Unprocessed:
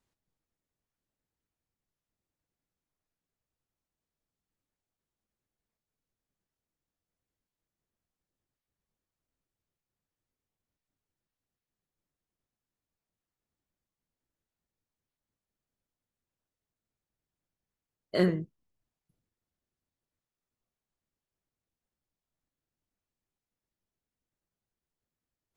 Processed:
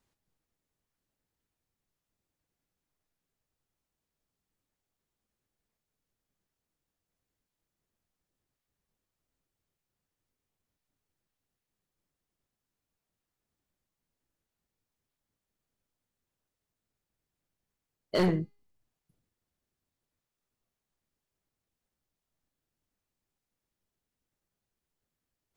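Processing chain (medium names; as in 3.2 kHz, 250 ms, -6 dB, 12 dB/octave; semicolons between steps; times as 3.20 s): hard clipper -24 dBFS, distortion -9 dB; feedback comb 410 Hz, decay 0.54 s, mix 40%; trim +7.5 dB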